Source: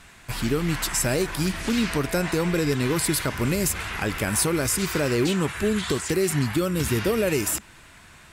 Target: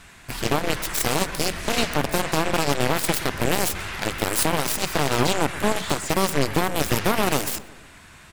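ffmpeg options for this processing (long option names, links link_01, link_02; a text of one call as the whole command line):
ffmpeg -i in.wav -filter_complex "[0:a]aeval=exprs='0.316*(cos(1*acos(clip(val(0)/0.316,-1,1)))-cos(1*PI/2))+0.0501*(cos(4*acos(clip(val(0)/0.316,-1,1)))-cos(4*PI/2))+0.1*(cos(7*acos(clip(val(0)/0.316,-1,1)))-cos(7*PI/2))':channel_layout=same,asplit=2[link_01][link_02];[link_02]adelay=123,lowpass=frequency=2600:poles=1,volume=-17dB,asplit=2[link_03][link_04];[link_04]adelay=123,lowpass=frequency=2600:poles=1,volume=0.55,asplit=2[link_05][link_06];[link_06]adelay=123,lowpass=frequency=2600:poles=1,volume=0.55,asplit=2[link_07][link_08];[link_08]adelay=123,lowpass=frequency=2600:poles=1,volume=0.55,asplit=2[link_09][link_10];[link_10]adelay=123,lowpass=frequency=2600:poles=1,volume=0.55[link_11];[link_01][link_03][link_05][link_07][link_09][link_11]amix=inputs=6:normalize=0" out.wav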